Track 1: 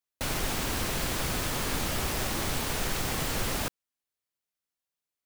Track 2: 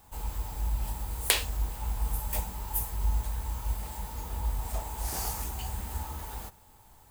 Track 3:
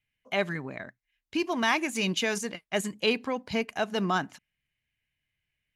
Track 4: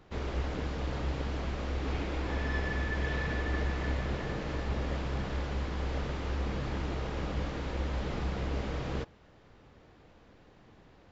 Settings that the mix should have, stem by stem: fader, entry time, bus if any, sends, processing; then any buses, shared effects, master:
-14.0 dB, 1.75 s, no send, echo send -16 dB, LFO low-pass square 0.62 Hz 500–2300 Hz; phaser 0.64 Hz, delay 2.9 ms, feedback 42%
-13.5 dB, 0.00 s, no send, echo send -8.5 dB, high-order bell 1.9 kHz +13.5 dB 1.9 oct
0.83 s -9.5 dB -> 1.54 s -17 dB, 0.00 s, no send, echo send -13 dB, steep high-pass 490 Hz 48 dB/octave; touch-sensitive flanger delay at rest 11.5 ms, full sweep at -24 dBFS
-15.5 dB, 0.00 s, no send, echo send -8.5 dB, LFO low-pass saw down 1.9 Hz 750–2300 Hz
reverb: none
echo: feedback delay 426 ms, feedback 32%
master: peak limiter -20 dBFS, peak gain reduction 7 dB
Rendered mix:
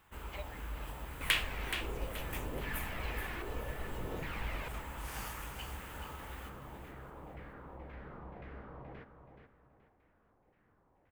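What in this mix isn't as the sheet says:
stem 1: entry 1.75 s -> 1.00 s; stem 3 -9.5 dB -> -16.0 dB; master: missing peak limiter -20 dBFS, peak gain reduction 7 dB

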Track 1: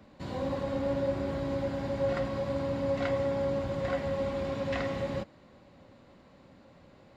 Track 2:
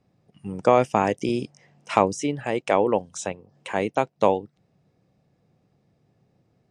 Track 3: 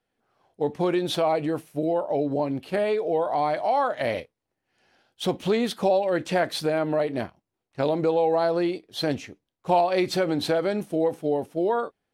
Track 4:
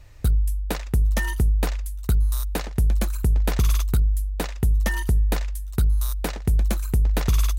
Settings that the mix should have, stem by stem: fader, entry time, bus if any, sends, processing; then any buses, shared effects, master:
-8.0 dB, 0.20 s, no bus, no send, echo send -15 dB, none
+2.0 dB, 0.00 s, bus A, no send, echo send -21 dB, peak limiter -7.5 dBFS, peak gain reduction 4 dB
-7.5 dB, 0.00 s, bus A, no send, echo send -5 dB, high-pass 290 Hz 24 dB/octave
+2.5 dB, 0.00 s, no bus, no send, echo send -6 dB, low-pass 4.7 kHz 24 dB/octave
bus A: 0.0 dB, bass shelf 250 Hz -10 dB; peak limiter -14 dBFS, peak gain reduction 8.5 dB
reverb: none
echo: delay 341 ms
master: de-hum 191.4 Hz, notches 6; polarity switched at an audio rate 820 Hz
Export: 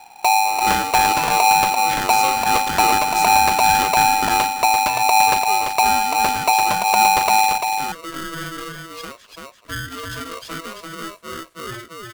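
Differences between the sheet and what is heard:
stem 3: missing high-pass 290 Hz 24 dB/octave; master: missing de-hum 191.4 Hz, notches 6

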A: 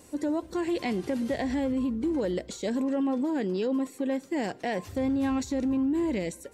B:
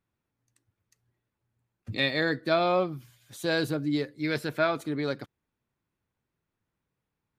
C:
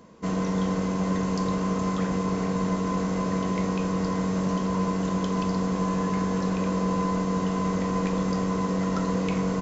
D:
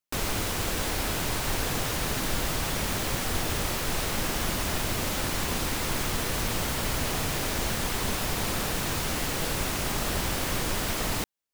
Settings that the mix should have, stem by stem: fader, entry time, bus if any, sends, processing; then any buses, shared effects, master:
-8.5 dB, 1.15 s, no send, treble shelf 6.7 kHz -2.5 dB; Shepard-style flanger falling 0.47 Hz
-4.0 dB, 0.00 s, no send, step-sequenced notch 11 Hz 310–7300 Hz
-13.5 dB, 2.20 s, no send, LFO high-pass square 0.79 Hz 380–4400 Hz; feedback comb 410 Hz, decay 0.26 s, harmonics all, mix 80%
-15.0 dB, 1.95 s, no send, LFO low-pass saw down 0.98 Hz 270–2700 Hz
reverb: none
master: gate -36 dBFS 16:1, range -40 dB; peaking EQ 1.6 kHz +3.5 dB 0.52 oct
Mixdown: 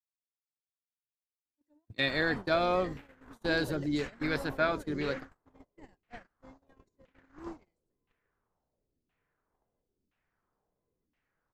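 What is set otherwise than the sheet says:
stem A: entry 1.15 s -> 1.45 s; stem B: missing step-sequenced notch 11 Hz 310–7300 Hz

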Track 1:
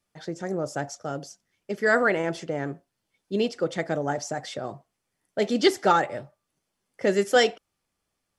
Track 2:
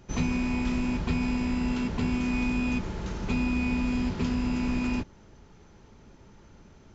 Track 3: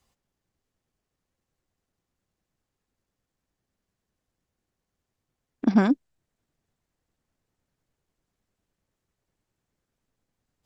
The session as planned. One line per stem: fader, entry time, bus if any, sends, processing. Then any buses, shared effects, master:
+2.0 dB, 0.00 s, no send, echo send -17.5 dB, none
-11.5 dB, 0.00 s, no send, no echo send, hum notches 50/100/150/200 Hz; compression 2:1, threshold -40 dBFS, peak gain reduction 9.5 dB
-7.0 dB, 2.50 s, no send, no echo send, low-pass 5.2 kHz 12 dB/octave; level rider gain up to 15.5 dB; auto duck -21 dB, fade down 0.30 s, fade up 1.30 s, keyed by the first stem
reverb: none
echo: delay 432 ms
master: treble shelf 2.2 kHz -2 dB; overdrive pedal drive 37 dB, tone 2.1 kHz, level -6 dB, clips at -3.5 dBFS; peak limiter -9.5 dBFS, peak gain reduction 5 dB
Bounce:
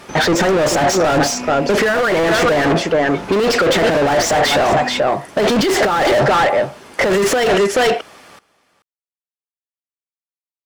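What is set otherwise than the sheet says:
stem 1 +2.0 dB -> +14.0 dB; stem 3: muted

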